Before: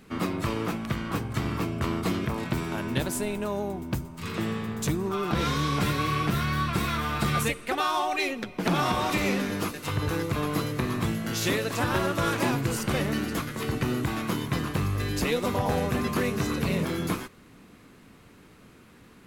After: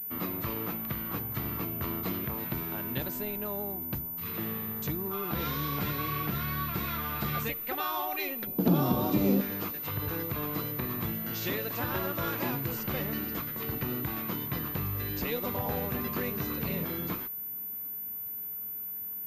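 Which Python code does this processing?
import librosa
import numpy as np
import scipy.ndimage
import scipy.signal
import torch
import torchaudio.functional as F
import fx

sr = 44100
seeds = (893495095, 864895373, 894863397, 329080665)

y = fx.graphic_eq_10(x, sr, hz=(125, 250, 500, 2000), db=(8, 10, 5, -11), at=(8.47, 9.41))
y = fx.pwm(y, sr, carrier_hz=14000.0)
y = y * librosa.db_to_amplitude(-7.0)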